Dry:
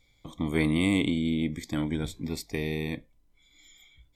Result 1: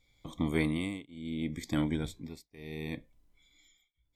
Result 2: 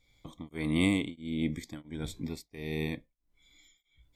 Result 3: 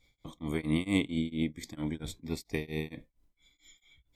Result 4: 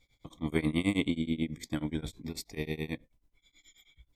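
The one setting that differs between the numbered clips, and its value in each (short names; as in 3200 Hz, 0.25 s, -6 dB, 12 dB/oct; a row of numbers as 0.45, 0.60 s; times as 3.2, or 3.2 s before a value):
tremolo, rate: 0.7, 1.5, 4.4, 9.3 Hz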